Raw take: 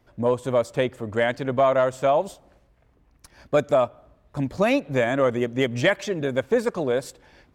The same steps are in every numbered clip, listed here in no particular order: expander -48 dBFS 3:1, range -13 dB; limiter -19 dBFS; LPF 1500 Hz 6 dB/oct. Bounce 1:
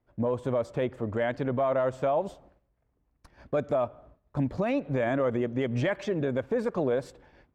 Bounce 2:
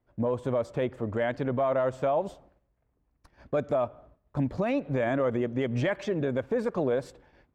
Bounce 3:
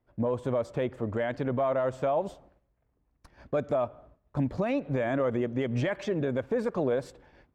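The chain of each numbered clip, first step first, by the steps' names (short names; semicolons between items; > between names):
expander > LPF > limiter; LPF > limiter > expander; limiter > expander > LPF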